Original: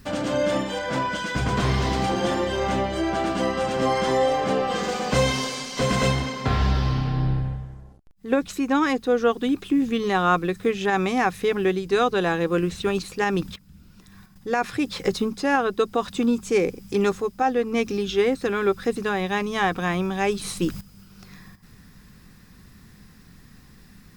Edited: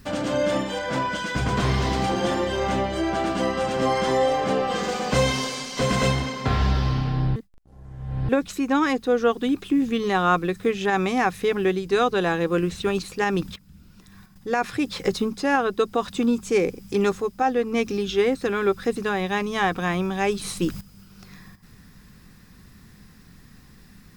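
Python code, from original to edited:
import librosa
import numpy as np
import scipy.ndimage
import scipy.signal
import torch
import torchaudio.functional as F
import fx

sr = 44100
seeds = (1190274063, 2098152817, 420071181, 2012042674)

y = fx.edit(x, sr, fx.reverse_span(start_s=7.36, length_s=0.93), tone=tone)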